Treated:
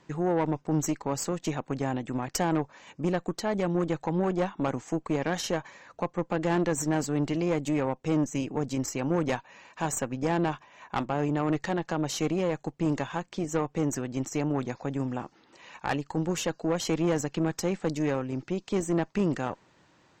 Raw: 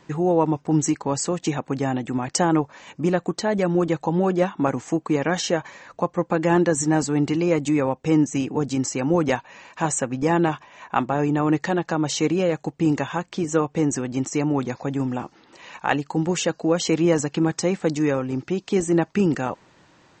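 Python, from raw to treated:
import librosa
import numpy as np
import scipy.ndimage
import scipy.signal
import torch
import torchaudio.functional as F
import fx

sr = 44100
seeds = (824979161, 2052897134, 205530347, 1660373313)

y = fx.tube_stage(x, sr, drive_db=16.0, bias=0.65)
y = y * 10.0 ** (-3.5 / 20.0)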